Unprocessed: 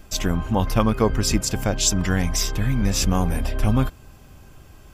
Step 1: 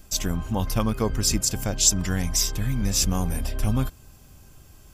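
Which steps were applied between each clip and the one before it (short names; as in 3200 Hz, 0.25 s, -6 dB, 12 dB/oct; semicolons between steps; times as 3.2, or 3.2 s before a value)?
tone controls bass +3 dB, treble +10 dB; gain -6.5 dB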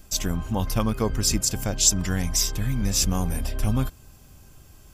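nothing audible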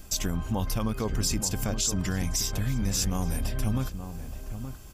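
limiter -15 dBFS, peak gain reduction 10 dB; compressor 1.5:1, threshold -36 dBFS, peak gain reduction 6 dB; outdoor echo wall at 150 m, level -9 dB; gain +3 dB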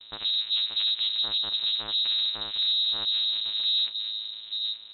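vocoder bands 4, saw 107 Hz; soft clip -30 dBFS, distortion -8 dB; inverted band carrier 3900 Hz; gain +7 dB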